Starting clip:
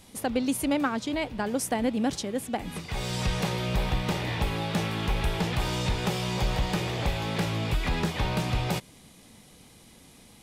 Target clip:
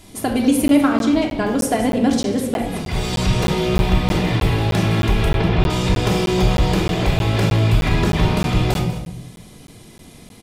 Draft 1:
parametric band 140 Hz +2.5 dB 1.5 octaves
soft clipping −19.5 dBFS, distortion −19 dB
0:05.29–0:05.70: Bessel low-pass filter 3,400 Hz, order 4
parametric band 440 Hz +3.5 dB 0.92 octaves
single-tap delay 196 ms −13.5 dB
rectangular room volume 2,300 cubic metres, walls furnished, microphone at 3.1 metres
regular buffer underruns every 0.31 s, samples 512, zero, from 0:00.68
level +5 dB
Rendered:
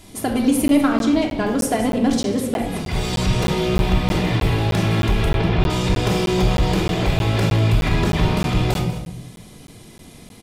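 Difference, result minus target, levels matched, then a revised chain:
soft clipping: distortion +15 dB
parametric band 140 Hz +2.5 dB 1.5 octaves
soft clipping −10.5 dBFS, distortion −34 dB
0:05.29–0:05.70: Bessel low-pass filter 3,400 Hz, order 4
parametric band 440 Hz +3.5 dB 0.92 octaves
single-tap delay 196 ms −13.5 dB
rectangular room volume 2,300 cubic metres, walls furnished, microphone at 3.1 metres
regular buffer underruns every 0.31 s, samples 512, zero, from 0:00.68
level +5 dB

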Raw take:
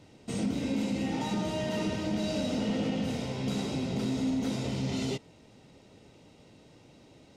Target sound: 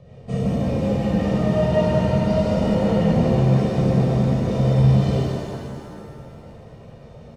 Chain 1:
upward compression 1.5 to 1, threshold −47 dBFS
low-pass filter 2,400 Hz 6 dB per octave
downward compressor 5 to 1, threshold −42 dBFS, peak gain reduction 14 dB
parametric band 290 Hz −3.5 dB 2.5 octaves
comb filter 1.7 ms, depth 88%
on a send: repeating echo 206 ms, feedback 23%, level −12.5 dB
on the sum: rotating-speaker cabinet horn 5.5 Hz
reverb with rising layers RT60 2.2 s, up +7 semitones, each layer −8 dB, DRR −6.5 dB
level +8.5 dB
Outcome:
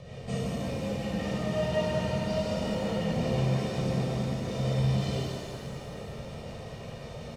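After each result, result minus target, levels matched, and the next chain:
downward compressor: peak gain reduction +14 dB; 2,000 Hz band +7.5 dB
upward compression 1.5 to 1, threshold −47 dBFS
low-pass filter 2,400 Hz 6 dB per octave
parametric band 290 Hz −3.5 dB 2.5 octaves
comb filter 1.7 ms, depth 88%
on a send: repeating echo 206 ms, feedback 23%, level −12.5 dB
on the sum: rotating-speaker cabinet horn 5.5 Hz
reverb with rising layers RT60 2.2 s, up +7 semitones, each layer −8 dB, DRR −6.5 dB
level +8.5 dB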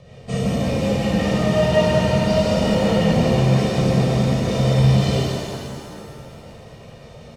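2,000 Hz band +6.5 dB
upward compression 1.5 to 1, threshold −47 dBFS
low-pass filter 620 Hz 6 dB per octave
parametric band 290 Hz −3.5 dB 2.5 octaves
comb filter 1.7 ms, depth 88%
on a send: repeating echo 206 ms, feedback 23%, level −12.5 dB
on the sum: rotating-speaker cabinet horn 5.5 Hz
reverb with rising layers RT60 2.2 s, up +7 semitones, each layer −8 dB, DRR −6.5 dB
level +8.5 dB

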